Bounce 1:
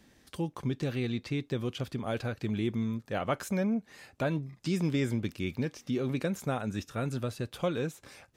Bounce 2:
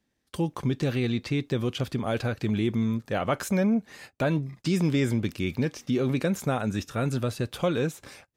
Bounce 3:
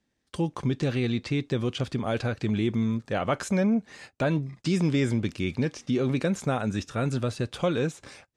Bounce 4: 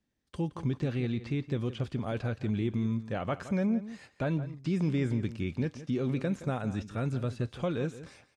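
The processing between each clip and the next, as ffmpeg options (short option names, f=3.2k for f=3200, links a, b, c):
-filter_complex "[0:a]agate=range=-22dB:threshold=-51dB:ratio=16:detection=peak,asplit=2[a][b];[b]alimiter=level_in=1dB:limit=-24dB:level=0:latency=1:release=31,volume=-1dB,volume=-2.5dB[c];[a][c]amix=inputs=2:normalize=0,volume=1.5dB"
-af "lowpass=f=9.3k:w=0.5412,lowpass=f=9.3k:w=1.3066"
-filter_complex "[0:a]lowshelf=f=200:g=6,acrossover=split=3200[a][b];[b]acompressor=threshold=-46dB:ratio=4:attack=1:release=60[c];[a][c]amix=inputs=2:normalize=0,asplit=2[d][e];[e]adelay=169.1,volume=-14dB,highshelf=f=4k:g=-3.8[f];[d][f]amix=inputs=2:normalize=0,volume=-7.5dB"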